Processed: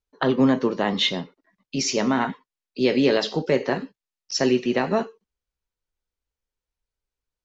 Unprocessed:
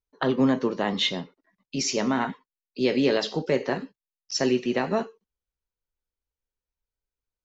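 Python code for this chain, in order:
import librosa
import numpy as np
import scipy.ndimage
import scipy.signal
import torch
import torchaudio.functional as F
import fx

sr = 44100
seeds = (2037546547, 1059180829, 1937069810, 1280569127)

y = scipy.signal.sosfilt(scipy.signal.butter(2, 7800.0, 'lowpass', fs=sr, output='sos'), x)
y = y * librosa.db_to_amplitude(3.0)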